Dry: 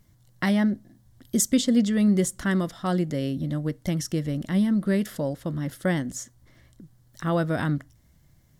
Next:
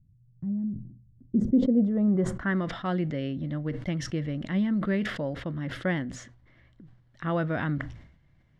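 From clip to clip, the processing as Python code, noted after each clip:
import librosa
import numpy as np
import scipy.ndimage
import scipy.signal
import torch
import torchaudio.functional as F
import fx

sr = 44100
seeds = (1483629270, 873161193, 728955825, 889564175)

y = fx.filter_sweep_lowpass(x, sr, from_hz=140.0, to_hz=2500.0, start_s=0.94, end_s=2.71, q=1.5)
y = fx.sustainer(y, sr, db_per_s=79.0)
y = y * 10.0 ** (-4.0 / 20.0)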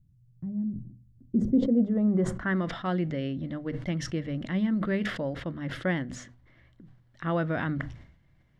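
y = fx.hum_notches(x, sr, base_hz=50, count=5)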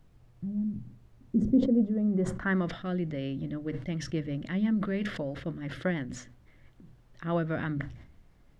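y = fx.rotary_switch(x, sr, hz=1.1, then_hz=6.0, switch_at_s=3.24)
y = fx.dmg_noise_colour(y, sr, seeds[0], colour='brown', level_db=-58.0)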